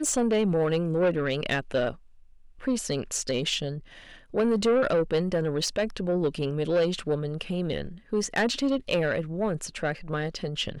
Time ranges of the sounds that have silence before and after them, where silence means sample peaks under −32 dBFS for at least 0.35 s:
0:02.65–0:03.78

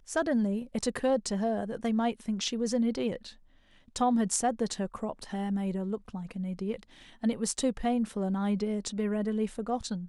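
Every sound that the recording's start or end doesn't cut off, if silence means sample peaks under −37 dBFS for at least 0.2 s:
0:03.96–0:06.83

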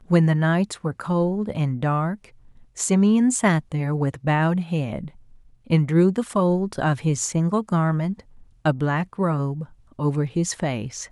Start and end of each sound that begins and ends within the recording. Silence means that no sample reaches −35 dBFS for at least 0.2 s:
0:02.77–0:05.08
0:05.67–0:08.20
0:08.65–0:09.65

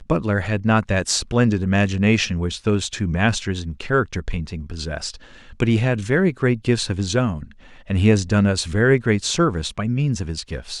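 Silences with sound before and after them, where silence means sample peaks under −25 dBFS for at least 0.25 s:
0:05.10–0:05.60
0:07.43–0:07.90

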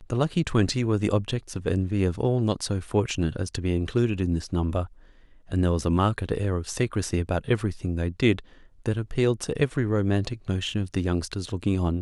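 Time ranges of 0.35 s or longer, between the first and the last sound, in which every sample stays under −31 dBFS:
0:04.85–0:05.52
0:08.39–0:08.86

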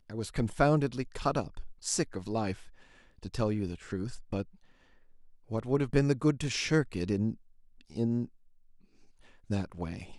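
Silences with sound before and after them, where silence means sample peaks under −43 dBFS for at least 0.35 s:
0:02.68–0:03.23
0:04.43–0:05.50
0:07.34–0:07.81
0:08.26–0:09.50

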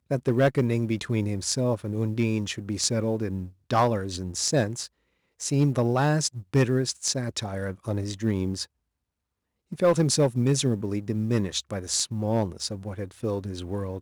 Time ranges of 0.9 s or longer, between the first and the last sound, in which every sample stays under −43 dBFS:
0:08.65–0:09.72

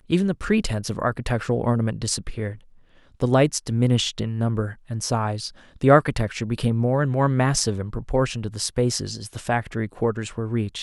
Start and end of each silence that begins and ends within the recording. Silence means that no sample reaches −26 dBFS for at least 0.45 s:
0:02.51–0:03.22

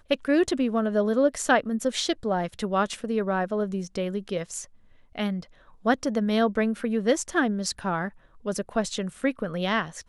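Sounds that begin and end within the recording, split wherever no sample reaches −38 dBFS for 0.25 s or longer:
0:05.15–0:05.43
0:05.85–0:08.09

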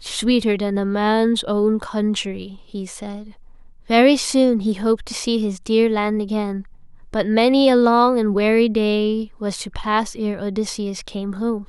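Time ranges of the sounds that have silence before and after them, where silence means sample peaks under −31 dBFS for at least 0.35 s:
0:03.90–0:06.62

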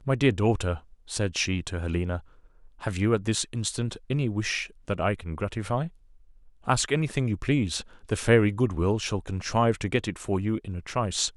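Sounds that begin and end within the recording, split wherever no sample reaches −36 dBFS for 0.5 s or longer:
0:02.83–0:05.88

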